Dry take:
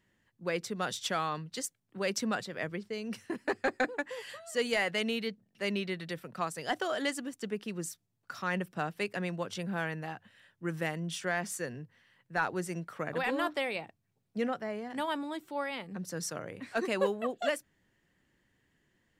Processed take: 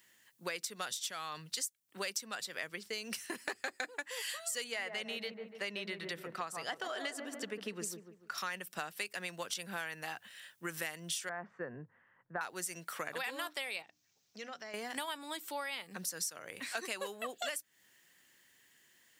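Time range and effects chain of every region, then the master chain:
0:00.88–0:01.52: parametric band 100 Hz +9 dB 1.1 octaves + downward compressor 1.5 to 1, threshold −42 dBFS
0:04.64–0:08.38: low-pass filter 1,900 Hz 6 dB per octave + delay with a low-pass on its return 146 ms, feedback 38%, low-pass 1,000 Hz, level −5 dB
0:11.29–0:12.41: low-pass filter 1,400 Hz 24 dB per octave + low-shelf EQ 200 Hz +5.5 dB
0:13.82–0:14.74: high shelf with overshoot 7,600 Hz −9 dB, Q 3 + mains-hum notches 60/120/180/240/300 Hz + downward compressor 2 to 1, threshold −54 dBFS
whole clip: spectral tilt +4.5 dB per octave; downward compressor 6 to 1, threshold −40 dBFS; level +3.5 dB

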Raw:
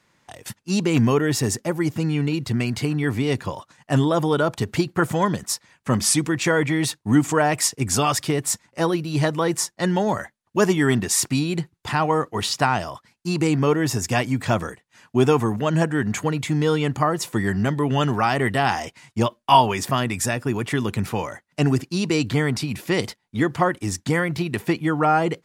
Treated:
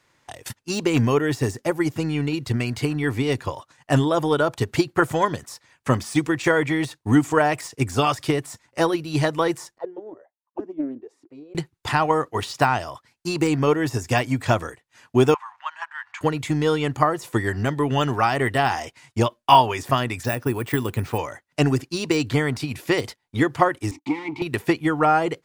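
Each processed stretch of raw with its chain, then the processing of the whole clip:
0:09.78–0:11.55: low-shelf EQ 170 Hz −9.5 dB + envelope filter 280–1,200 Hz, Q 8.6, down, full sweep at −17.5 dBFS + highs frequency-modulated by the lows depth 0.18 ms
0:15.34–0:16.21: mu-law and A-law mismatch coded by A + elliptic high-pass filter 930 Hz, stop band 50 dB + head-to-tape spacing loss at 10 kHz 28 dB
0:20.23–0:21.18: low-pass filter 5,900 Hz 24 dB per octave + bad sample-rate conversion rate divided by 4×, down none, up hold
0:23.91–0:24.42: low-shelf EQ 210 Hz −6 dB + leveller curve on the samples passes 5 + formant filter u
whole clip: de-essing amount 60%; transient designer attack +4 dB, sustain −2 dB; parametric band 190 Hz −13 dB 0.37 octaves

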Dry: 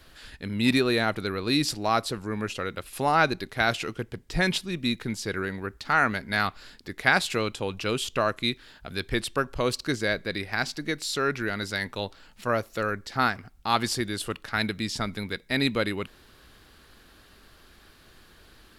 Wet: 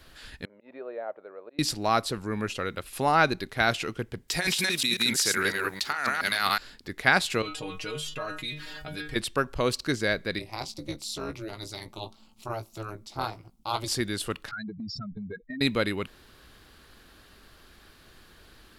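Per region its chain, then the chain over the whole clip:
0:00.45–0:01.59: volume swells 156 ms + four-pole ladder band-pass 640 Hz, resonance 65% + high-frequency loss of the air 220 metres
0:04.28–0:06.58: delay that plays each chunk backwards 138 ms, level −2 dB + spectral tilt +3.5 dB per octave + compressor whose output falls as the input rises −26 dBFS
0:07.42–0:09.16: stiff-string resonator 150 Hz, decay 0.24 s, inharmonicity 0.002 + envelope flattener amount 70%
0:10.39–0:13.88: phaser with its sweep stopped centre 330 Hz, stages 8 + amplitude modulation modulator 220 Hz, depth 75% + double-tracking delay 18 ms −9 dB
0:14.51–0:15.61: expanding power law on the bin magnitudes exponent 3.9 + downward compressor 10 to 1, threshold −33 dBFS
whole clip: no processing

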